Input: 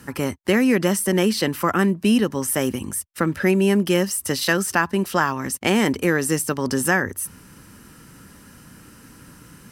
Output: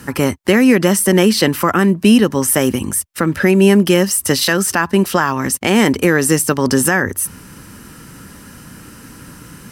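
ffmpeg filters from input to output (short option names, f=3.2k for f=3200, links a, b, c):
-af "alimiter=limit=-10dB:level=0:latency=1:release=161,volume=8.5dB"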